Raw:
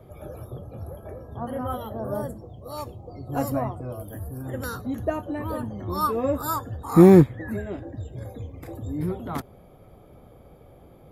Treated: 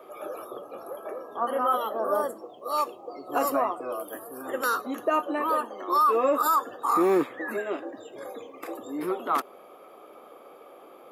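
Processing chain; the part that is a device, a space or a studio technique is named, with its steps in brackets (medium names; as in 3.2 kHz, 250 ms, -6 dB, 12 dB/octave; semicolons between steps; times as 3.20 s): laptop speaker (high-pass 330 Hz 24 dB/octave; peaking EQ 1.2 kHz +11 dB 0.41 oct; peaking EQ 2.7 kHz +8 dB 0.28 oct; peak limiter -19 dBFS, peak gain reduction 14 dB); 5.49–6.02 s: high-pass 310 Hz 12 dB/octave; trim +4 dB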